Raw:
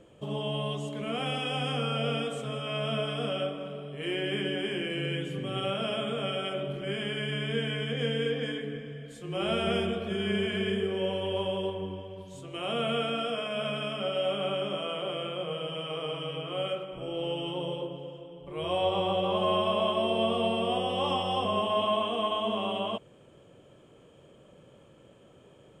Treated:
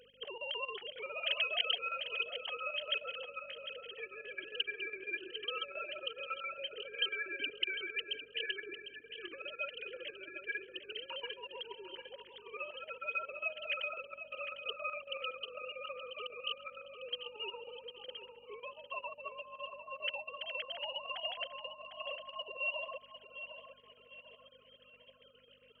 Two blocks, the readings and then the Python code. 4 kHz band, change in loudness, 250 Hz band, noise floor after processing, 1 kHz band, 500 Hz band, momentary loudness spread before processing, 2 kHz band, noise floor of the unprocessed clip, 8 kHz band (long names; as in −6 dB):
−5.5 dB, −9.0 dB, −27.0 dB, −62 dBFS, −13.5 dB, −16.0 dB, 9 LU, −1.5 dB, −56 dBFS, can't be measured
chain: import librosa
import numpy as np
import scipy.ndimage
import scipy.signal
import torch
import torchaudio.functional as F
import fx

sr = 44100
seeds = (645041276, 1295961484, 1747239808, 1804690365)

y = fx.sine_speech(x, sr)
y = fx.dereverb_blind(y, sr, rt60_s=1.2)
y = fx.peak_eq(y, sr, hz=1400.0, db=-6.0, octaves=2.5)
y = fx.hum_notches(y, sr, base_hz=60, count=6)
y = fx.over_compress(y, sr, threshold_db=-43.0, ratio=-1.0)
y = fx.add_hum(y, sr, base_hz=50, snr_db=13)
y = np.diff(y, prepend=0.0)
y = fx.chopper(y, sr, hz=7.3, depth_pct=65, duty_pct=75)
y = fx.echo_feedback(y, sr, ms=752, feedback_pct=40, wet_db=-10.5)
y = F.gain(torch.from_numpy(y), 16.5).numpy()